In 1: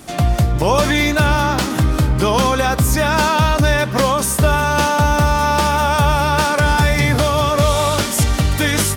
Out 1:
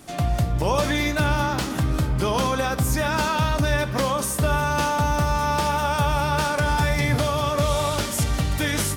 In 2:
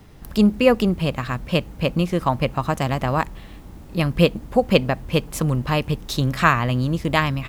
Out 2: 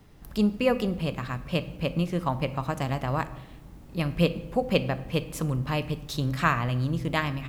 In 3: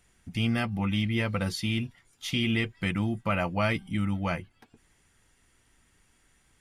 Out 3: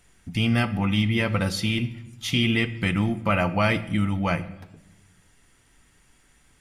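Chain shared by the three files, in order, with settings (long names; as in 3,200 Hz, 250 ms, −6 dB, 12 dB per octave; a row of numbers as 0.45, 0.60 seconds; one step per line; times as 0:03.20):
rectangular room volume 380 cubic metres, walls mixed, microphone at 0.31 metres
normalise the peak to −9 dBFS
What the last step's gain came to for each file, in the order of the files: −7.5, −7.5, +5.0 decibels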